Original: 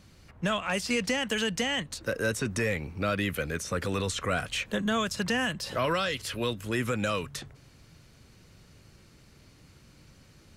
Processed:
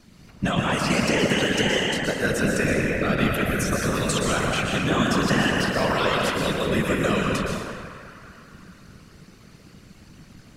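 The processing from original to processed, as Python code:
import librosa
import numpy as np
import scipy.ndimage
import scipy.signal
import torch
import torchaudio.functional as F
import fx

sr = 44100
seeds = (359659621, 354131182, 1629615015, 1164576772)

y = fx.high_shelf(x, sr, hz=8400.0, db=9.5, at=(3.57, 4.36))
y = fx.echo_banded(y, sr, ms=204, feedback_pct=71, hz=1500.0, wet_db=-9.5)
y = fx.rev_plate(y, sr, seeds[0], rt60_s=2.0, hf_ratio=0.5, predelay_ms=105, drr_db=-1.5)
y = fx.whisperise(y, sr, seeds[1])
y = fx.peak_eq(y, sr, hz=190.0, db=5.0, octaves=0.68)
y = y * 10.0 ** (2.5 / 20.0)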